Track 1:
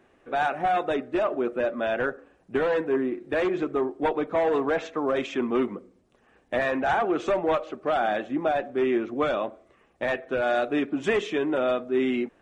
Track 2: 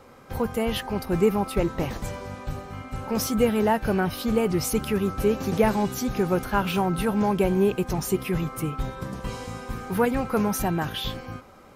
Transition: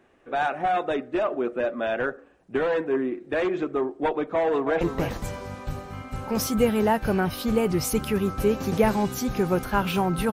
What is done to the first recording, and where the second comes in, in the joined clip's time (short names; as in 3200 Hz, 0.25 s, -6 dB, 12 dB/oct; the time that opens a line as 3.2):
track 1
4.35–4.81 echo throw 0.31 s, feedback 10%, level -9.5 dB
4.81 switch to track 2 from 1.61 s